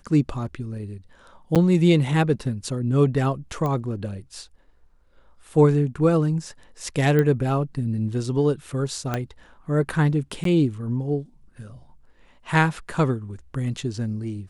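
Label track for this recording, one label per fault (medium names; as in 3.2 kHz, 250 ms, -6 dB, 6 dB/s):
1.550000	1.560000	dropout 7.6 ms
3.660000	3.660000	pop -16 dBFS
7.190000	7.190000	pop -11 dBFS
9.140000	9.140000	pop -11 dBFS
10.440000	10.450000	dropout 13 ms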